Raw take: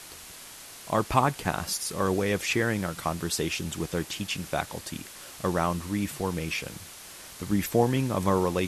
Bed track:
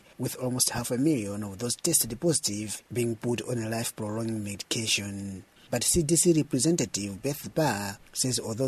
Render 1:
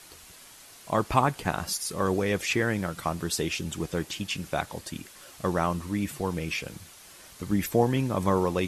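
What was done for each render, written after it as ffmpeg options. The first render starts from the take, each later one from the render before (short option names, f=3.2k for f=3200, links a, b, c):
-af "afftdn=nr=6:nf=-45"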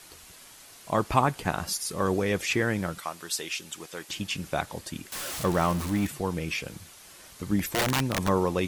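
-filter_complex "[0:a]asettb=1/sr,asplit=3[a][b][c];[a]atrim=end=2.984[d];[b]atrim=start=2.98:end=4.09,asetpts=PTS-STARTPTS,afade=t=in:d=0.004:c=qsin,afade=t=out:st=1.106:d=0.004:c=qsin,highpass=f=1.2k:p=1[e];[c]atrim=start=4.086[f];[d][e]acrossfade=d=0.004:c1=hsin:c2=qsin[g];[g][f]acrossfade=d=0.004:c1=qsin:c2=hsin,asettb=1/sr,asplit=3[h][i][j];[h]atrim=end=5.124[k];[i]atrim=start=5.12:end=6.07,asetpts=PTS-STARTPTS,afade=t=in:d=0.004:c=qsin,afade=t=out:st=0.946:d=0.004:c=qsin,aeval=exprs='val(0)+0.5*0.0299*sgn(val(0))':c=same[l];[j]atrim=start=6.066[m];[k][l]acrossfade=d=0.004:c1=hsin:c2=qsin[n];[n][m]acrossfade=d=0.004:c1=qsin:c2=hsin,asplit=3[o][p][q];[o]afade=t=out:st=7.59:d=0.02[r];[p]aeval=exprs='(mod(8.91*val(0)+1,2)-1)/8.91':c=same,afade=t=in:st=7.59:d=0.02,afade=t=out:st=8.27:d=0.02[s];[q]afade=t=in:st=8.27:d=0.02[t];[r][s][t]amix=inputs=3:normalize=0"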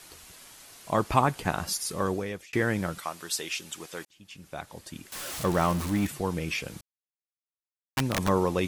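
-filter_complex "[0:a]asplit=5[a][b][c][d][e];[a]atrim=end=2.53,asetpts=PTS-STARTPTS,afade=t=out:st=1.94:d=0.59[f];[b]atrim=start=2.53:end=4.05,asetpts=PTS-STARTPTS,afade=t=in:d=0.004:c=hsin,afade=t=out:st=1.516:d=0.004:c=hsin[g];[c]atrim=start=4.05:end=6.81,asetpts=PTS-STARTPTS,afade=t=in:d=1.54,afade=t=out:st=2.756:d=0.004:c=hsin[h];[d]atrim=start=6.81:end=7.97,asetpts=PTS-STARTPTS,volume=0[i];[e]atrim=start=7.97,asetpts=PTS-STARTPTS,afade=t=in:d=0.004:c=hsin[j];[f][g][h][i][j]concat=n=5:v=0:a=1"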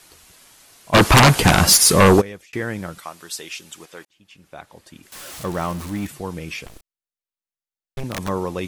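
-filter_complex "[0:a]asplit=3[a][b][c];[a]afade=t=out:st=0.93:d=0.02[d];[b]aeval=exprs='0.473*sin(PI/2*7.08*val(0)/0.473)':c=same,afade=t=in:st=0.93:d=0.02,afade=t=out:st=2.2:d=0.02[e];[c]afade=t=in:st=2.2:d=0.02[f];[d][e][f]amix=inputs=3:normalize=0,asettb=1/sr,asplit=3[g][h][i];[g]atrim=end=3.854[j];[h]atrim=start=3.85:end=5.03,asetpts=PTS-STARTPTS,afade=t=in:d=0.004:c=qsin,afade=t=out:st=1.176:d=0.004:c=qsin,bass=f=250:g=-4,treble=f=4k:g=-5[k];[i]atrim=start=5.026[l];[j][k]acrossfade=d=0.004:c1=hsin:c2=qsin[m];[m][l]acrossfade=d=0.004:c1=qsin:c2=hsin,asettb=1/sr,asplit=3[n][o][p];[n]atrim=end=6.664[q];[o]atrim=start=6.66:end=8.04,asetpts=PTS-STARTPTS,afade=t=in:d=0.004:c=qsin,afade=t=out:st=1.376:d=0.004:c=qsin,aeval=exprs='abs(val(0))':c=same[r];[p]atrim=start=8.036[s];[q][r]acrossfade=d=0.004:c1=hsin:c2=qsin[t];[t][s]acrossfade=d=0.004:c1=qsin:c2=hsin"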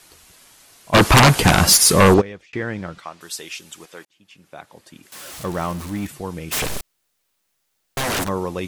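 -filter_complex "[0:a]asettb=1/sr,asplit=3[a][b][c];[a]atrim=end=2.144[d];[b]atrim=start=2.14:end=3.21,asetpts=PTS-STARTPTS,afade=t=in:d=0.004:c=qsin,afade=t=out:st=1.066:d=0.004:c=qsin,lowpass=4.6k[e];[c]atrim=start=3.206[f];[d][e]acrossfade=d=0.004:c1=hsin:c2=qsin[g];[g][f]acrossfade=d=0.004:c1=qsin:c2=hsin,asettb=1/sr,asplit=3[h][i][j];[h]atrim=end=3.854[k];[i]atrim=start=3.85:end=5.25,asetpts=PTS-STARTPTS,afade=t=in:d=0.004:c=qsin,afade=t=out:st=1.396:d=0.004:c=qsin,highpass=110[l];[j]atrim=start=5.246[m];[k][l]acrossfade=d=0.004:c1=hsin:c2=qsin[n];[n][m]acrossfade=d=0.004:c1=qsin:c2=hsin,asplit=3[o][p][q];[o]afade=t=out:st=6.51:d=0.02[r];[p]aeval=exprs='0.112*sin(PI/2*7.94*val(0)/0.112)':c=same,afade=t=in:st=6.51:d=0.02,afade=t=out:st=8.23:d=0.02[s];[q]afade=t=in:st=8.23:d=0.02[t];[r][s][t]amix=inputs=3:normalize=0"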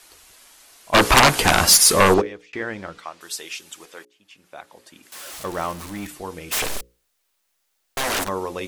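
-af "equalizer=f=130:t=o:w=1.5:g=-11.5,bandreject=f=60:t=h:w=6,bandreject=f=120:t=h:w=6,bandreject=f=180:t=h:w=6,bandreject=f=240:t=h:w=6,bandreject=f=300:t=h:w=6,bandreject=f=360:t=h:w=6,bandreject=f=420:t=h:w=6,bandreject=f=480:t=h:w=6,bandreject=f=540:t=h:w=6"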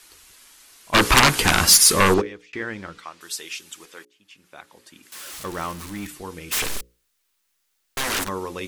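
-af "equalizer=f=660:t=o:w=0.88:g=-7.5"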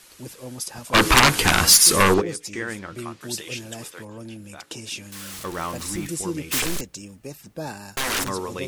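-filter_complex "[1:a]volume=-7dB[a];[0:a][a]amix=inputs=2:normalize=0"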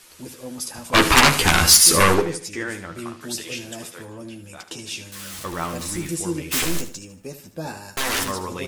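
-filter_complex "[0:a]asplit=2[a][b];[b]adelay=12,volume=-6dB[c];[a][c]amix=inputs=2:normalize=0,aecho=1:1:76|152|228:0.251|0.0854|0.029"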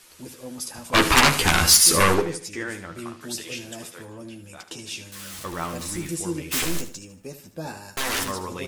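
-af "volume=-2.5dB"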